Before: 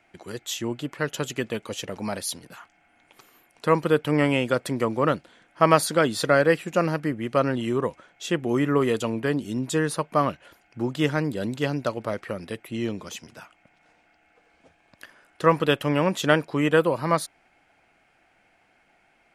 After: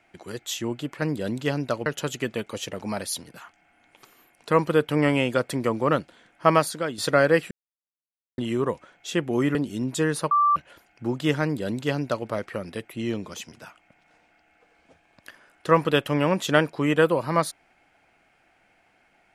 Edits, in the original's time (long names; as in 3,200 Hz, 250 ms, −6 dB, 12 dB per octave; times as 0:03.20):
0:05.65–0:06.14: fade out quadratic, to −9 dB
0:06.67–0:07.54: silence
0:08.71–0:09.30: remove
0:10.06–0:10.31: beep over 1,170 Hz −16 dBFS
0:11.18–0:12.02: duplicate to 0:01.02